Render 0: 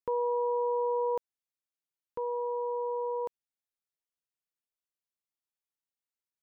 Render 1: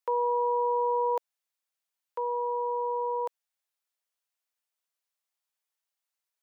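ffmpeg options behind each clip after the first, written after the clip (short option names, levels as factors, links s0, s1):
-af "highpass=f=540:w=0.5412,highpass=f=540:w=1.3066,volume=2"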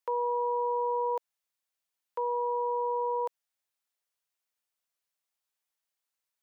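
-af "alimiter=limit=0.0668:level=0:latency=1:release=37"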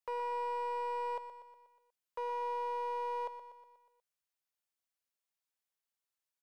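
-filter_complex "[0:a]volume=23.7,asoftclip=hard,volume=0.0422,asplit=2[s0][s1];[s1]aecho=0:1:121|242|363|484|605|726:0.282|0.152|0.0822|0.0444|0.024|0.0129[s2];[s0][s2]amix=inputs=2:normalize=0,volume=0.501"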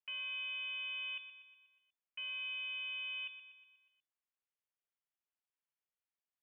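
-af "lowpass=f=3000:t=q:w=0.5098,lowpass=f=3000:t=q:w=0.6013,lowpass=f=3000:t=q:w=0.9,lowpass=f=3000:t=q:w=2.563,afreqshift=-3500,volume=0.562"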